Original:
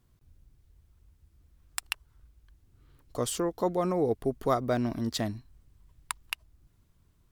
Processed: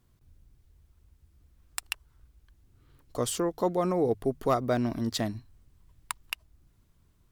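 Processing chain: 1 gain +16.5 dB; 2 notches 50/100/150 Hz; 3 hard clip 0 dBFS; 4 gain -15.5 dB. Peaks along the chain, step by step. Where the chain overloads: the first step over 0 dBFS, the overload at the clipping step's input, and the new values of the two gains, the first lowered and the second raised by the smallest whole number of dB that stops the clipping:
+7.0, +7.0, 0.0, -15.5 dBFS; step 1, 7.0 dB; step 1 +9.5 dB, step 4 -8.5 dB

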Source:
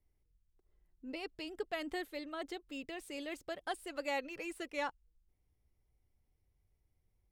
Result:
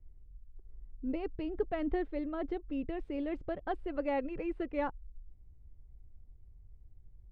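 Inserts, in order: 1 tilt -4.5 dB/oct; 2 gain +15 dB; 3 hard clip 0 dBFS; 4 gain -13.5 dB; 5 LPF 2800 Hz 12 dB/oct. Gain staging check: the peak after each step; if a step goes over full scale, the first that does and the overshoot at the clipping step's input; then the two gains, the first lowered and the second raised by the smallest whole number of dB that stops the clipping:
-21.0, -6.0, -6.0, -19.5, -19.5 dBFS; no overload

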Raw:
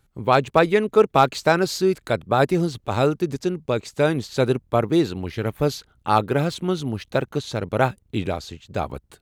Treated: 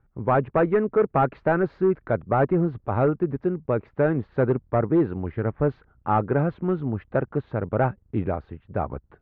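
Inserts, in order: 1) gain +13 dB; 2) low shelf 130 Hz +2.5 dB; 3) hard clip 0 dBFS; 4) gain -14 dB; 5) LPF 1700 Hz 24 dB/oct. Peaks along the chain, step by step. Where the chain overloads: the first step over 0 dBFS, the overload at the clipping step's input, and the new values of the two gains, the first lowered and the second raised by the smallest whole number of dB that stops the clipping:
+8.5, +9.0, 0.0, -14.0, -12.5 dBFS; step 1, 9.0 dB; step 1 +4 dB, step 4 -5 dB

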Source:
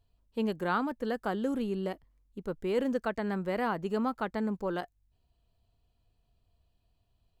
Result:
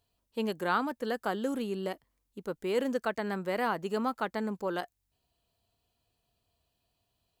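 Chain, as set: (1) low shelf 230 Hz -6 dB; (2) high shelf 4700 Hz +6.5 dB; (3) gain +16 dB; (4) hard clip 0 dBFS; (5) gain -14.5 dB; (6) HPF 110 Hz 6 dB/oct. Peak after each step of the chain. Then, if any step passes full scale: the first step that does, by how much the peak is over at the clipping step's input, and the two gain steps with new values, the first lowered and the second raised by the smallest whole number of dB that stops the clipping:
-18.5, -18.5, -2.5, -2.5, -17.0, -16.5 dBFS; no overload

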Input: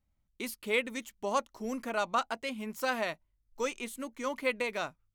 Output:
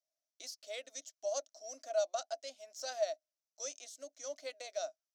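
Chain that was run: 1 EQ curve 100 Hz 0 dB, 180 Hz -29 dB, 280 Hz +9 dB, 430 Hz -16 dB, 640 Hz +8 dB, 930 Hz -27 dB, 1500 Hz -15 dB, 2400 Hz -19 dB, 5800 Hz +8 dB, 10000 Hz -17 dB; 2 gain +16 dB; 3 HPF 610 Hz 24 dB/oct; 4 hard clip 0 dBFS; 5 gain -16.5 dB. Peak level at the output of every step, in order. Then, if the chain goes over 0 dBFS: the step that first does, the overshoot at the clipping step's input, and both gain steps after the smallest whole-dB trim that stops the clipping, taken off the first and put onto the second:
-20.0, -4.0, -5.5, -5.5, -22.0 dBFS; no overload

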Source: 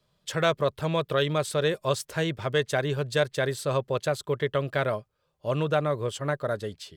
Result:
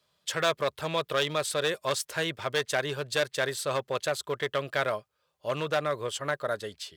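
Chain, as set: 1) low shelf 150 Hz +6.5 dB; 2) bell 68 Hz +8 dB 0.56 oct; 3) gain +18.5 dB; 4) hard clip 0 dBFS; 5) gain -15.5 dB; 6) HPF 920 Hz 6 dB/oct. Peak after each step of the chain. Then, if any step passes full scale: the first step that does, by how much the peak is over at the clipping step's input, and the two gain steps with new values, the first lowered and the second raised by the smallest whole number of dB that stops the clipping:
-10.5, -11.0, +7.5, 0.0, -15.5, -12.0 dBFS; step 3, 7.5 dB; step 3 +10.5 dB, step 5 -7.5 dB

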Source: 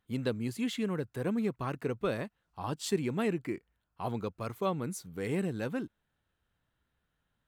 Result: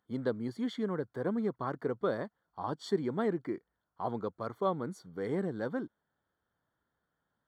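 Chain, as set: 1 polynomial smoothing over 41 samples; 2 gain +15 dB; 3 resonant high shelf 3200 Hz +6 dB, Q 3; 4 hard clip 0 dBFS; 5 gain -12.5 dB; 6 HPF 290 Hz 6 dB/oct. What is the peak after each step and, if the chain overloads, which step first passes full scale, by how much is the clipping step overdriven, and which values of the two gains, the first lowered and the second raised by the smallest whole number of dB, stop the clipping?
-18.5, -3.5, -3.5, -3.5, -16.0, -18.0 dBFS; no overload

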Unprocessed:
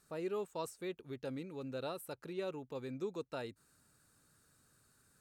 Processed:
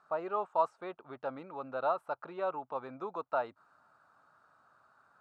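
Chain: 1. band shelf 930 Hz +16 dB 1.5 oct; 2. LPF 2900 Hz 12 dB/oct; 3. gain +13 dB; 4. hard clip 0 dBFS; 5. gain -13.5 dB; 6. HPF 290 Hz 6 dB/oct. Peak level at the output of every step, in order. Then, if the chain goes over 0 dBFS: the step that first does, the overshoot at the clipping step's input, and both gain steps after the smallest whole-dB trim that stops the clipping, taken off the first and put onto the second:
-15.0, -15.0, -2.0, -2.0, -15.5, -16.5 dBFS; no overload

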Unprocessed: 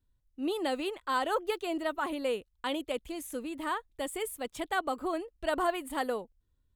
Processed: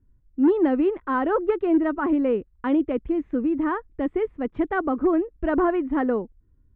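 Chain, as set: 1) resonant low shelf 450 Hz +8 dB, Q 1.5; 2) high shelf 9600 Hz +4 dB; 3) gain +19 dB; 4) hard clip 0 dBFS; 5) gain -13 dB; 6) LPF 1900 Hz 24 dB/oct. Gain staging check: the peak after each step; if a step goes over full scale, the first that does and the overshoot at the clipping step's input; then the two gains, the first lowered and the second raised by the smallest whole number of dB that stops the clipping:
-15.5, -15.5, +3.5, 0.0, -13.0, -12.5 dBFS; step 3, 3.5 dB; step 3 +15 dB, step 5 -9 dB

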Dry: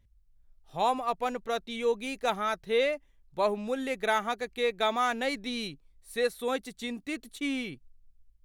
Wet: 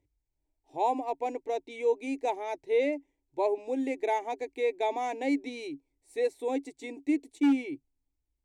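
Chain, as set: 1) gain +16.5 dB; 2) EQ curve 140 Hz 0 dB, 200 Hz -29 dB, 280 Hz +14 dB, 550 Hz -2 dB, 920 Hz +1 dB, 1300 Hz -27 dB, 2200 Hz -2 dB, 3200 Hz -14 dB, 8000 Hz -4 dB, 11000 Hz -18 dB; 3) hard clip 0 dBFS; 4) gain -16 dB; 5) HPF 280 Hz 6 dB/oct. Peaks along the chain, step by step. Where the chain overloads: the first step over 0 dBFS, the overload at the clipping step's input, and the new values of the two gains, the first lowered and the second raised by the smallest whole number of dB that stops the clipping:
+1.0, +3.0, 0.0, -16.0, -16.0 dBFS; step 1, 3.0 dB; step 1 +13.5 dB, step 4 -13 dB

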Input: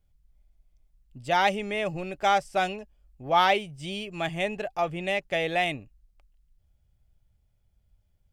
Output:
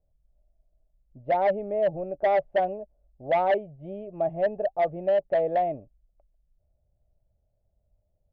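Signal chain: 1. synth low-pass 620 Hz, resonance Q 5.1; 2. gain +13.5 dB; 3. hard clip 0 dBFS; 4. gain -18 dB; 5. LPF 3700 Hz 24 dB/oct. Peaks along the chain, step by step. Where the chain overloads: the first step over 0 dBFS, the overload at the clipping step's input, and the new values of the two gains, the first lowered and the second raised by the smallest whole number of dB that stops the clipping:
-4.0, +9.5, 0.0, -18.0, -17.0 dBFS; step 2, 9.5 dB; step 2 +3.5 dB, step 4 -8 dB

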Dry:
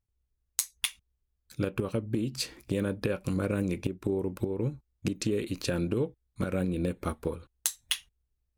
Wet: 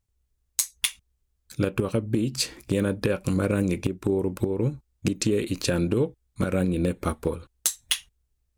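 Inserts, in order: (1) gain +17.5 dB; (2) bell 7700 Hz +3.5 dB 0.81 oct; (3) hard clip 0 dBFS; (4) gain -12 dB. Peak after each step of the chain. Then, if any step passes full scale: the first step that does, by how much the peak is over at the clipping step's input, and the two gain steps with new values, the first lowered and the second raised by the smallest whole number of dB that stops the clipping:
+7.0, +10.0, 0.0, -12.0 dBFS; step 1, 10.0 dB; step 1 +7.5 dB, step 4 -2 dB

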